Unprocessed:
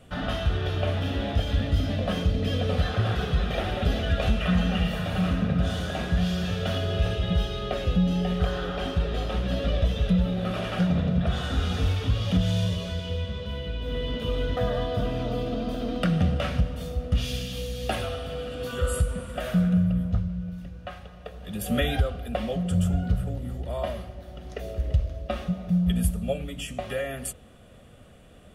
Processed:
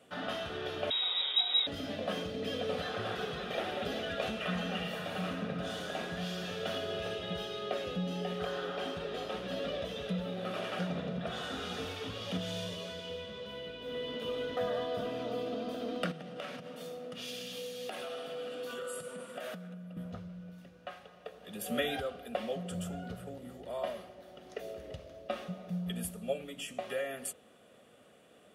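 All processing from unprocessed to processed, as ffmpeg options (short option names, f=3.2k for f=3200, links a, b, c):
-filter_complex "[0:a]asettb=1/sr,asplit=3[a][b][c];[a]atrim=end=0.904[d];[b]atrim=start=0.9:end=1.67,asetpts=PTS-STARTPTS,afade=t=in:d=0.004:c=qsin,afade=t=out:st=0.766:d=0.004:c=qsin,acrusher=bits=8:dc=4:mix=0:aa=0.000001,lowpass=f=3.3k:t=q:w=0.5098,lowpass=f=3.3k:t=q:w=0.6013,lowpass=f=3.3k:t=q:w=0.9,lowpass=f=3.3k:t=q:w=2.563,afreqshift=-3900[e];[c]atrim=start=1.666[f];[d][e]acrossfade=d=0.004:c1=hsin:c2=qsin[g];[g][f]acrossfade=d=0.004:c1=qsin:c2=hsin,asettb=1/sr,asplit=3[h][i][j];[h]atrim=end=16.114[k];[i]atrim=start=16.11:end=19.97,asetpts=PTS-STARTPTS,afade=t=in:d=0.004:c=qsin,afade=t=out:st=3.856:d=0.004:c=qsin,highpass=f=140:w=0.5412,highpass=f=140:w=1.3066,acompressor=threshold=-30dB:ratio=12:attack=3.2:release=140:knee=1:detection=peak[l];[j]atrim=start=19.966[m];[k][l]acrossfade=d=0.004:c1=hsin:c2=qsin[n];[n][m]acrossfade=d=0.004:c1=qsin:c2=hsin,highpass=270,equalizer=f=440:t=o:w=0.27:g=2.5,volume=-5.5dB"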